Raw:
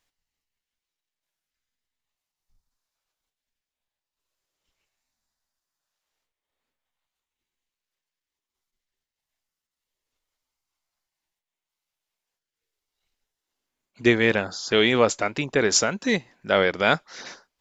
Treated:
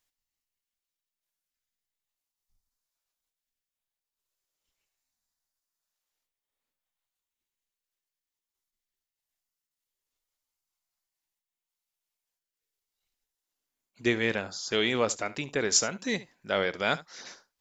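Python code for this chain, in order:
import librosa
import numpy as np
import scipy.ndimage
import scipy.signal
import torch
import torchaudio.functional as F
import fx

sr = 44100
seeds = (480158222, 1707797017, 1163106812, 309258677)

y = fx.high_shelf(x, sr, hz=6200.0, db=10.5)
y = y + 10.0 ** (-18.0 / 20.0) * np.pad(y, (int(71 * sr / 1000.0), 0))[:len(y)]
y = F.gain(torch.from_numpy(y), -8.0).numpy()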